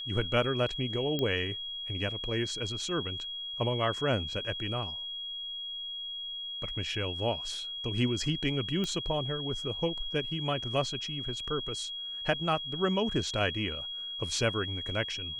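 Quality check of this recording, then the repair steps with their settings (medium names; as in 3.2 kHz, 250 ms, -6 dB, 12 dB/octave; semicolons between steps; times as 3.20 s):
whine 3.3 kHz -36 dBFS
1.19 s: pop -18 dBFS
8.84 s: pop -20 dBFS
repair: de-click; band-stop 3.3 kHz, Q 30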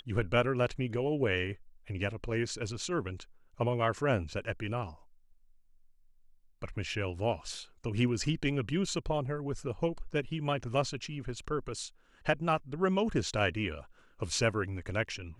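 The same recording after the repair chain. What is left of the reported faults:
nothing left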